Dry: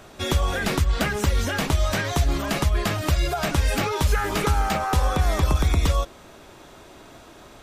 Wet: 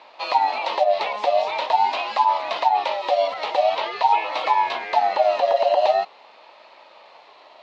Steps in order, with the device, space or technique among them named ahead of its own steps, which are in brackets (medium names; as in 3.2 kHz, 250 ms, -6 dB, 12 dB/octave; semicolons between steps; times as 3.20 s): 3.63–4.33 s: low-pass 6 kHz 12 dB/octave; voice changer toy (ring modulator with a swept carrier 780 Hz, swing 20%, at 0.45 Hz; cabinet simulation 560–4400 Hz, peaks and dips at 620 Hz +8 dB, 910 Hz +7 dB, 1.5 kHz -10 dB, 2.6 kHz +4 dB, 4 kHz +7 dB)